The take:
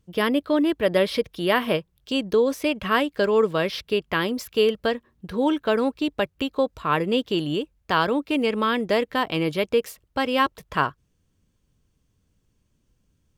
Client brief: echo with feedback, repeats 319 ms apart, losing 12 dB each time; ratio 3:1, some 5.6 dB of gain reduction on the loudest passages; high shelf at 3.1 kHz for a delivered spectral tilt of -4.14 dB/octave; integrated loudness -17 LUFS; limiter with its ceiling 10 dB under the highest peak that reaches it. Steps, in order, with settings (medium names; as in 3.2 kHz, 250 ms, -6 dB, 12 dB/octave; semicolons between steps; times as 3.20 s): treble shelf 3.1 kHz +7.5 dB; compression 3:1, threshold -22 dBFS; peak limiter -19.5 dBFS; feedback delay 319 ms, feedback 25%, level -12 dB; trim +12.5 dB